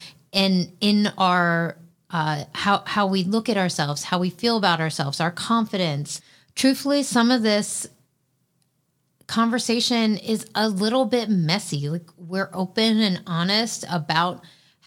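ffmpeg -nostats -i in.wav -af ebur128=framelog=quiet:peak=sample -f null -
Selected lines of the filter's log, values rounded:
Integrated loudness:
  I:         -22.1 LUFS
  Threshold: -32.6 LUFS
Loudness range:
  LRA:         1.8 LU
  Threshold: -42.7 LUFS
  LRA low:   -23.7 LUFS
  LRA high:  -21.8 LUFS
Sample peak:
  Peak:       -4.0 dBFS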